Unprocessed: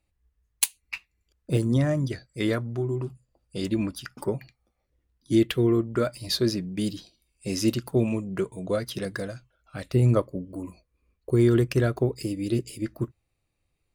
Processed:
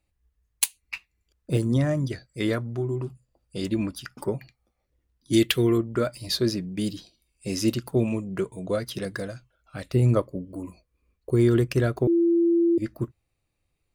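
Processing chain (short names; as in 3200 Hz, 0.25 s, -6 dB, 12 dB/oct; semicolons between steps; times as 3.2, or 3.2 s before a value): 5.33–5.78 high shelf 2100 Hz +11 dB; 12.07–12.78 bleep 339 Hz -17 dBFS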